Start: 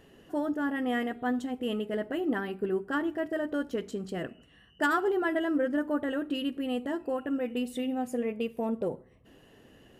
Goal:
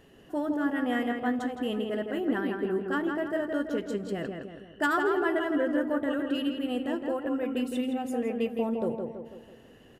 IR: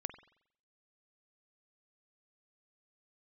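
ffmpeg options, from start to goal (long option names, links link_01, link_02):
-filter_complex "[0:a]asplit=2[link_01][link_02];[link_02]adelay=164,lowpass=frequency=3100:poles=1,volume=-4.5dB,asplit=2[link_03][link_04];[link_04]adelay=164,lowpass=frequency=3100:poles=1,volume=0.5,asplit=2[link_05][link_06];[link_06]adelay=164,lowpass=frequency=3100:poles=1,volume=0.5,asplit=2[link_07][link_08];[link_08]adelay=164,lowpass=frequency=3100:poles=1,volume=0.5,asplit=2[link_09][link_10];[link_10]adelay=164,lowpass=frequency=3100:poles=1,volume=0.5,asplit=2[link_11][link_12];[link_12]adelay=164,lowpass=frequency=3100:poles=1,volume=0.5[link_13];[link_01][link_03][link_05][link_07][link_09][link_11][link_13]amix=inputs=7:normalize=0"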